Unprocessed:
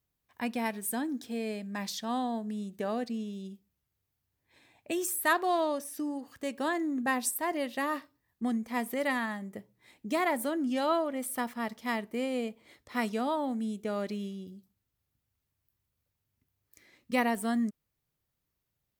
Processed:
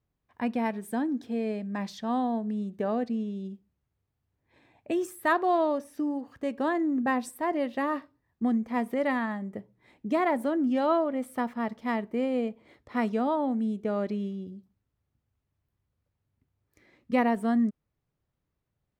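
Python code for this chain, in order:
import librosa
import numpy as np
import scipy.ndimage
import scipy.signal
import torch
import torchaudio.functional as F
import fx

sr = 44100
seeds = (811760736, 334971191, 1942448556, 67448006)

y = fx.lowpass(x, sr, hz=1100.0, slope=6)
y = F.gain(torch.from_numpy(y), 5.0).numpy()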